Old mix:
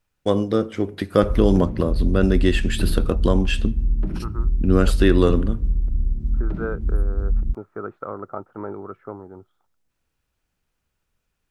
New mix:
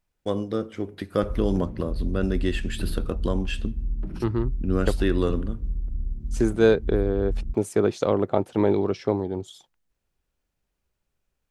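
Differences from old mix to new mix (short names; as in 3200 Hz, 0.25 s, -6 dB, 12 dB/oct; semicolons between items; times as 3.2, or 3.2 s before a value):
first voice -7.0 dB; second voice: remove ladder low-pass 1400 Hz, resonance 80%; background -7.5 dB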